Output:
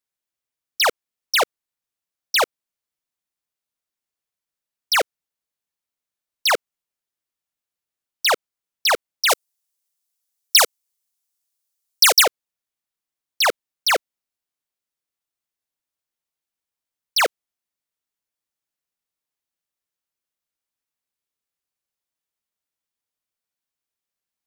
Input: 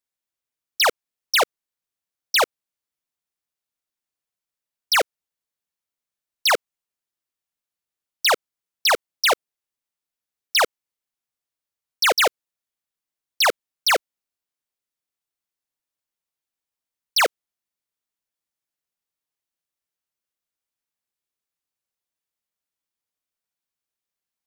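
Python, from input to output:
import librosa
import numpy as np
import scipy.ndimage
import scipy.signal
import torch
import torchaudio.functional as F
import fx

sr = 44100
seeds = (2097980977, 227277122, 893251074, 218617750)

y = fx.bass_treble(x, sr, bass_db=-13, treble_db=12, at=(9.29, 12.22), fade=0.02)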